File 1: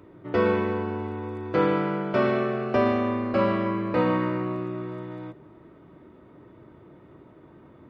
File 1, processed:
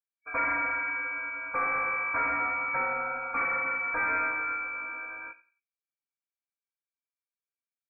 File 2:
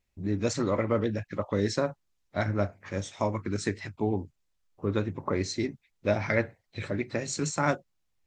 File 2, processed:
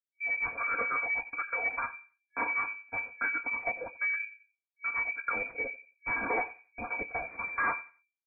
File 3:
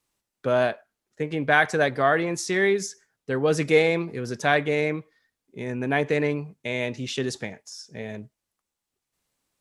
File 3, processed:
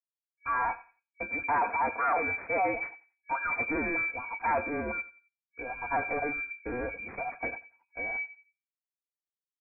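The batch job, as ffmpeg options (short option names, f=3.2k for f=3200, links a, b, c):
-filter_complex "[0:a]agate=range=-56dB:threshold=-38dB:ratio=16:detection=peak,afftfilt=real='re*(1-between(b*sr/4096,230,810))':imag='im*(1-between(b*sr/4096,230,810))':win_size=4096:overlap=0.75,bandreject=f=50:t=h:w=6,bandreject=f=100:t=h:w=6,bandreject=f=150:t=h:w=6,bandreject=f=200:t=h:w=6,bandreject=f=250:t=h:w=6,bandreject=f=300:t=h:w=6,bandreject=f=350:t=h:w=6,bandreject=f=400:t=h:w=6,bandreject=f=450:t=h:w=6,aecho=1:1:4.5:0.92,acontrast=43,asoftclip=type=tanh:threshold=-20.5dB,crystalizer=i=3.5:c=0,aeval=exprs='0.668*(cos(1*acos(clip(val(0)/0.668,-1,1)))-cos(1*PI/2))+0.0211*(cos(2*acos(clip(val(0)/0.668,-1,1)))-cos(2*PI/2))':c=same,asoftclip=type=hard:threshold=-13dB,asplit=2[a][b];[b]adelay=89,lowpass=f=1.4k:p=1,volume=-16dB,asplit=2[c][d];[d]adelay=89,lowpass=f=1.4k:p=1,volume=0.31,asplit=2[e][f];[f]adelay=89,lowpass=f=1.4k:p=1,volume=0.31[g];[c][e][g]amix=inputs=3:normalize=0[h];[a][h]amix=inputs=2:normalize=0,lowpass=f=2.1k:t=q:w=0.5098,lowpass=f=2.1k:t=q:w=0.6013,lowpass=f=2.1k:t=q:w=0.9,lowpass=f=2.1k:t=q:w=2.563,afreqshift=-2500,volume=-5dB"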